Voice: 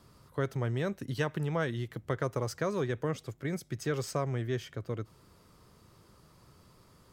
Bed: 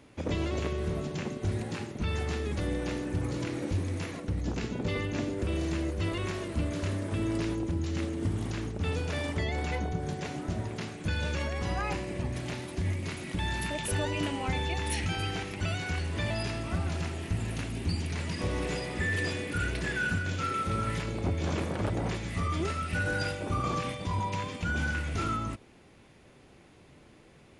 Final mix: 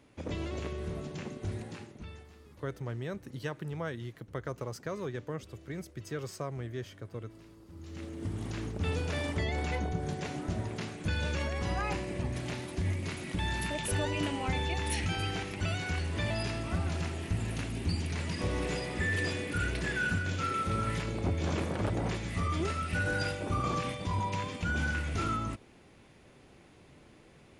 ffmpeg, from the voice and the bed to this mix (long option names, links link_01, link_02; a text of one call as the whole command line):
ffmpeg -i stem1.wav -i stem2.wav -filter_complex "[0:a]adelay=2250,volume=-5.5dB[link_01];[1:a]volume=17dB,afade=type=out:start_time=1.51:duration=0.77:silence=0.125893,afade=type=in:start_time=7.67:duration=1.15:silence=0.0749894[link_02];[link_01][link_02]amix=inputs=2:normalize=0" out.wav